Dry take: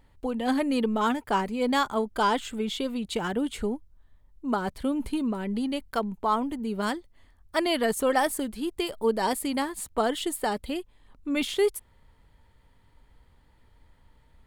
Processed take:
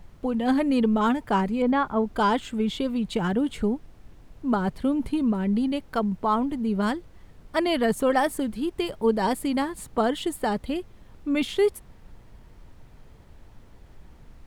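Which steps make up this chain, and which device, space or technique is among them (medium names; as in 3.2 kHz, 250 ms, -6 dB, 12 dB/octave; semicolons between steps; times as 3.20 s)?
1.62–2.10 s: low-pass 2 kHz 12 dB/octave; car interior (peaking EQ 160 Hz +8.5 dB 0.92 oct; treble shelf 4.1 kHz -7 dB; brown noise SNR 21 dB); trim +1.5 dB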